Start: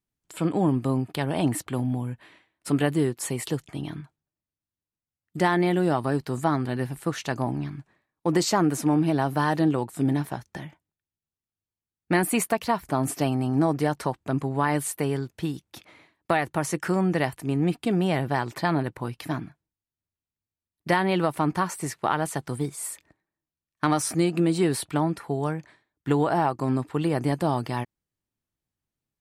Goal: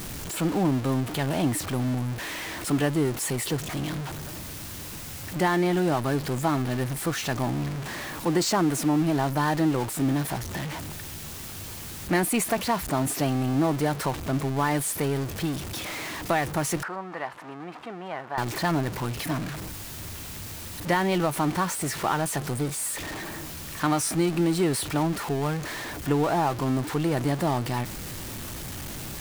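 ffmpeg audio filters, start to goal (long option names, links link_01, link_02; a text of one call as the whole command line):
ffmpeg -i in.wav -filter_complex "[0:a]aeval=exprs='val(0)+0.5*0.0531*sgn(val(0))':channel_layout=same,asettb=1/sr,asplit=3[link_01][link_02][link_03];[link_01]atrim=end=16.834[link_04];[link_02]atrim=start=16.83:end=18.38,asetpts=PTS-STARTPTS,afade=type=in:duration=0.004:curve=qsin,afade=type=out:start_time=1.546:duration=0.004:curve=qsin,bandpass=frequency=1100:width_type=q:width=1.5:csg=0[link_05];[link_03]atrim=start=18.376[link_06];[link_04][link_05]acrossfade=duration=0.004:curve1=hsin:curve2=qsin[link_07];[link_07][link_06]acrossfade=duration=0.004:curve1=qsin:curve2=hsin,volume=-3dB" out.wav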